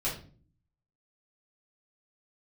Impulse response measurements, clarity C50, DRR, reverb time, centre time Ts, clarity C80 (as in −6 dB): 7.5 dB, −7.5 dB, 0.45 s, 28 ms, 12.5 dB